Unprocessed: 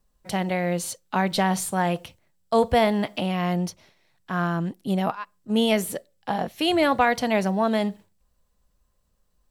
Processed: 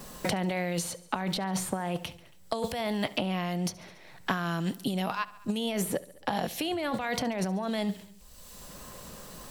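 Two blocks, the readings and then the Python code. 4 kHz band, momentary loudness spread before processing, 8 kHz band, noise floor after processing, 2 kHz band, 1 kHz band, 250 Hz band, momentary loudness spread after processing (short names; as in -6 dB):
-4.5 dB, 10 LU, -3.0 dB, -53 dBFS, -6.5 dB, -8.5 dB, -6.5 dB, 14 LU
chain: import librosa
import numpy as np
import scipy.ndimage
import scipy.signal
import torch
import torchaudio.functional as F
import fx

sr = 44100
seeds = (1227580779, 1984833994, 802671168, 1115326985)

p1 = fx.over_compress(x, sr, threshold_db=-28.0, ratio=-1.0)
p2 = p1 + fx.echo_feedback(p1, sr, ms=69, feedback_pct=55, wet_db=-20.5, dry=0)
p3 = fx.wow_flutter(p2, sr, seeds[0], rate_hz=2.1, depth_cents=20.0)
p4 = fx.band_squash(p3, sr, depth_pct=100)
y = F.gain(torch.from_numpy(p4), -3.5).numpy()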